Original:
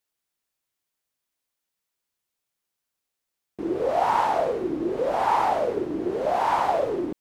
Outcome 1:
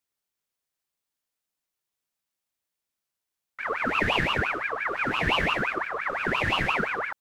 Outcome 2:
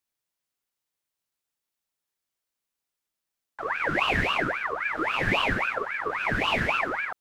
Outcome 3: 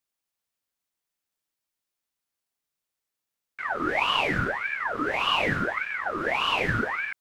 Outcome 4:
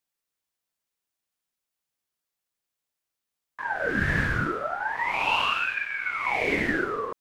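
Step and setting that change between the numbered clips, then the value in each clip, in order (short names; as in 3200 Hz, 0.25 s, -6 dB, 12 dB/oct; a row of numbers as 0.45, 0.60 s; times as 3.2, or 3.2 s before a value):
ring modulator with a swept carrier, at: 5.8, 3.7, 1.7, 0.35 Hz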